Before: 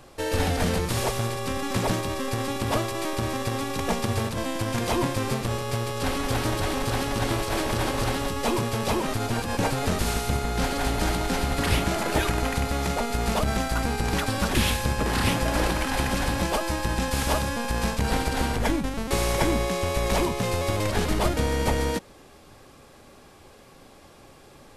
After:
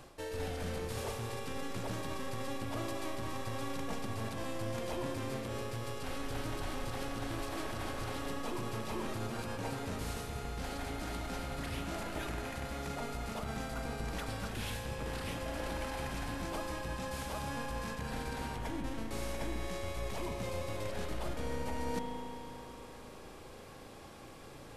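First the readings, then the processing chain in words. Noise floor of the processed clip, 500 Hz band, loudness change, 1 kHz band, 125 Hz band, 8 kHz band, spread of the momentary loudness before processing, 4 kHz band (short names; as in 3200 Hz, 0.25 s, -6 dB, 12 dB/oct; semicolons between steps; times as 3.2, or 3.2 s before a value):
-51 dBFS, -12.5 dB, -13.5 dB, -13.0 dB, -13.5 dB, -15.0 dB, 4 LU, -14.5 dB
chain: reverse; compressor 6:1, threshold -36 dBFS, peak gain reduction 17.5 dB; reverse; spring tank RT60 3.6 s, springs 36 ms, chirp 70 ms, DRR 3.5 dB; gain -2.5 dB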